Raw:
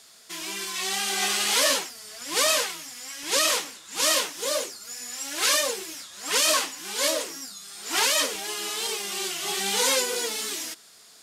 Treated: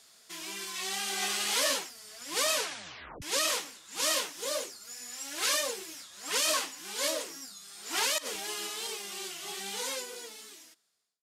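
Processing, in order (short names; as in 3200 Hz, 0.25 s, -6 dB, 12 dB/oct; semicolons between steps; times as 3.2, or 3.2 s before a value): ending faded out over 2.76 s; 2.56 tape stop 0.66 s; 8.18–8.67 negative-ratio compressor -29 dBFS, ratio -0.5; gain -6.5 dB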